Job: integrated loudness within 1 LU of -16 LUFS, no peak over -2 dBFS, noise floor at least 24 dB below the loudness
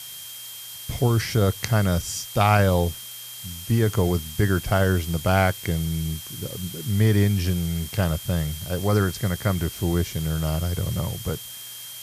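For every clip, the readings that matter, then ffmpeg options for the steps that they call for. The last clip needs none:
steady tone 3.2 kHz; tone level -41 dBFS; noise floor -38 dBFS; noise floor target -48 dBFS; loudness -23.5 LUFS; peak level -5.5 dBFS; loudness target -16.0 LUFS
-> -af "bandreject=f=3200:w=30"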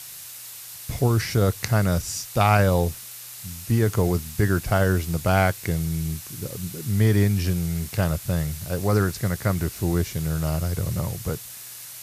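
steady tone not found; noise floor -40 dBFS; noise floor target -48 dBFS
-> -af "afftdn=nr=8:nf=-40"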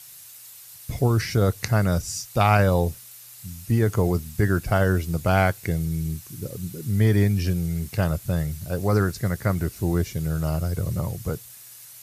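noise floor -45 dBFS; noise floor target -48 dBFS
-> -af "afftdn=nr=6:nf=-45"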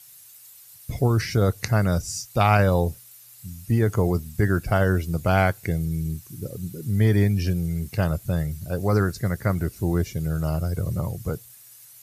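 noise floor -48 dBFS; loudness -24.0 LUFS; peak level -6.0 dBFS; loudness target -16.0 LUFS
-> -af "volume=2.51,alimiter=limit=0.794:level=0:latency=1"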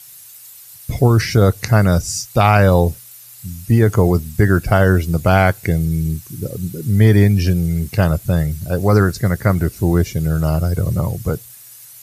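loudness -16.0 LUFS; peak level -2.0 dBFS; noise floor -40 dBFS

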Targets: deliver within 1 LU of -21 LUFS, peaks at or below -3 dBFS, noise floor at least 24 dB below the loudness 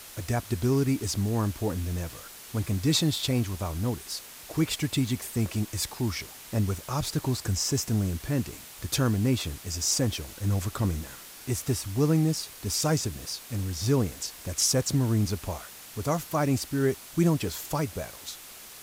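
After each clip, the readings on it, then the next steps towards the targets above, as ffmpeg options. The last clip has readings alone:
noise floor -46 dBFS; noise floor target -53 dBFS; loudness -28.5 LUFS; peak level -12.0 dBFS; loudness target -21.0 LUFS
-> -af "afftdn=nr=7:nf=-46"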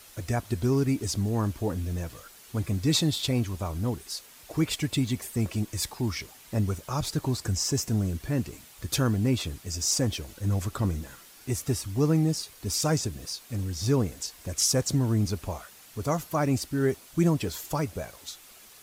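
noise floor -52 dBFS; noise floor target -53 dBFS
-> -af "afftdn=nr=6:nf=-52"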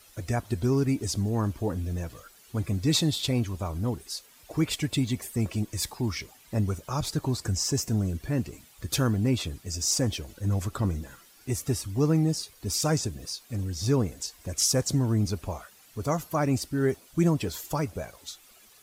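noise floor -56 dBFS; loudness -28.5 LUFS; peak level -12.5 dBFS; loudness target -21.0 LUFS
-> -af "volume=2.37"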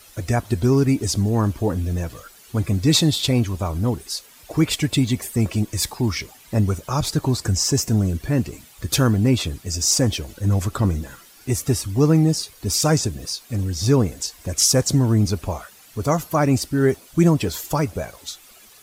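loudness -21.0 LUFS; peak level -5.0 dBFS; noise floor -48 dBFS

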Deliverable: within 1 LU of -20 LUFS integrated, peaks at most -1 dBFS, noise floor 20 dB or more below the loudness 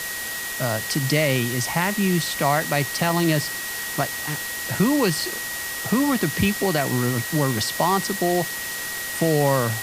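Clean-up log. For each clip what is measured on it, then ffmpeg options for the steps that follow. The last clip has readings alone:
steady tone 1.9 kHz; tone level -31 dBFS; noise floor -30 dBFS; noise floor target -43 dBFS; loudness -22.5 LUFS; peak level -7.0 dBFS; loudness target -20.0 LUFS
-> -af "bandreject=f=1900:w=30"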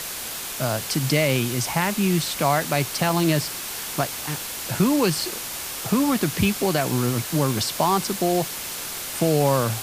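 steady tone not found; noise floor -32 dBFS; noise floor target -43 dBFS
-> -af "afftdn=nr=11:nf=-32"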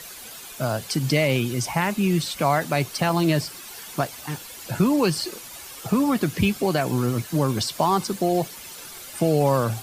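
noise floor -40 dBFS; noise floor target -44 dBFS
-> -af "afftdn=nr=6:nf=-40"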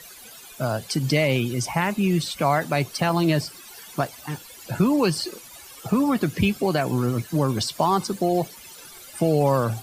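noise floor -44 dBFS; loudness -23.5 LUFS; peak level -7.5 dBFS; loudness target -20.0 LUFS
-> -af "volume=1.5"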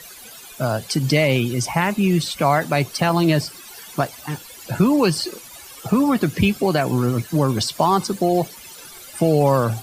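loudness -20.0 LUFS; peak level -4.0 dBFS; noise floor -41 dBFS

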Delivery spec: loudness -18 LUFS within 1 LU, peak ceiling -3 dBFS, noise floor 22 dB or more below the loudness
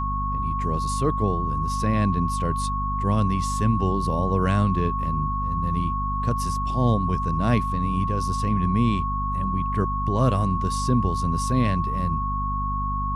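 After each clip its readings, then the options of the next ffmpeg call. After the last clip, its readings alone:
hum 50 Hz; highest harmonic 250 Hz; hum level -26 dBFS; steady tone 1.1 kHz; tone level -26 dBFS; loudness -24.0 LUFS; peak level -8.5 dBFS; loudness target -18.0 LUFS
-> -af "bandreject=f=50:t=h:w=4,bandreject=f=100:t=h:w=4,bandreject=f=150:t=h:w=4,bandreject=f=200:t=h:w=4,bandreject=f=250:t=h:w=4"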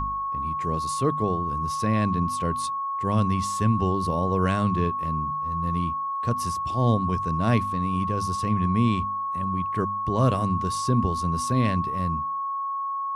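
hum not found; steady tone 1.1 kHz; tone level -26 dBFS
-> -af "bandreject=f=1100:w=30"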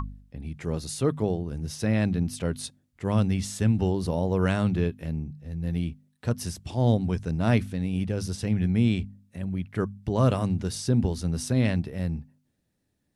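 steady tone not found; loudness -27.5 LUFS; peak level -10.0 dBFS; loudness target -18.0 LUFS
-> -af "volume=2.99,alimiter=limit=0.708:level=0:latency=1"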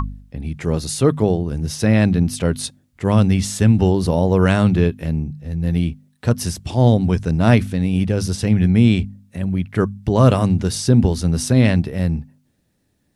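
loudness -18.0 LUFS; peak level -3.0 dBFS; noise floor -65 dBFS

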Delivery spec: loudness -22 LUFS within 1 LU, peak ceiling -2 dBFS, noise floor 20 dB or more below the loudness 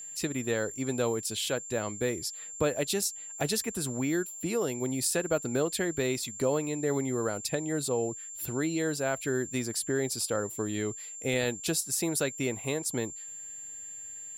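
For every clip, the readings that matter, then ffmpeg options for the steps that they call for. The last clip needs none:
steady tone 7.3 kHz; tone level -40 dBFS; loudness -31.0 LUFS; peak level -15.5 dBFS; loudness target -22.0 LUFS
-> -af "bandreject=f=7300:w=30"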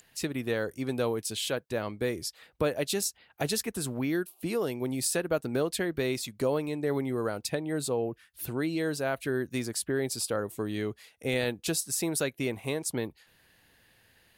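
steady tone not found; loudness -31.5 LUFS; peak level -16.0 dBFS; loudness target -22.0 LUFS
-> -af "volume=2.99"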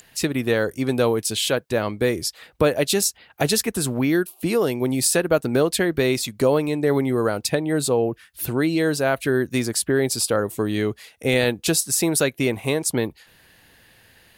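loudness -22.0 LUFS; peak level -6.5 dBFS; noise floor -55 dBFS

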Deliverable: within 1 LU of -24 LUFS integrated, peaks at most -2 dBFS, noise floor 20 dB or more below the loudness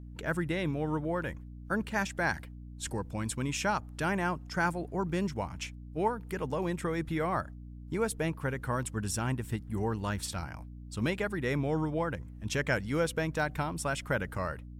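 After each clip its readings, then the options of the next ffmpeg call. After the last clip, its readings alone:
hum 60 Hz; highest harmonic 300 Hz; hum level -43 dBFS; loudness -33.0 LUFS; peak level -16.0 dBFS; loudness target -24.0 LUFS
-> -af "bandreject=f=60:t=h:w=4,bandreject=f=120:t=h:w=4,bandreject=f=180:t=h:w=4,bandreject=f=240:t=h:w=4,bandreject=f=300:t=h:w=4"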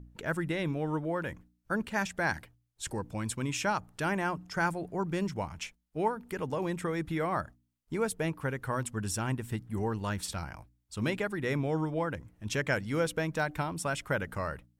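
hum not found; loudness -33.5 LUFS; peak level -16.0 dBFS; loudness target -24.0 LUFS
-> -af "volume=2.99"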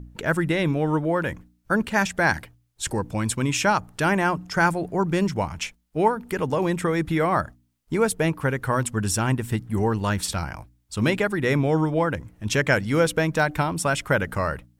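loudness -24.0 LUFS; peak level -6.5 dBFS; noise floor -66 dBFS

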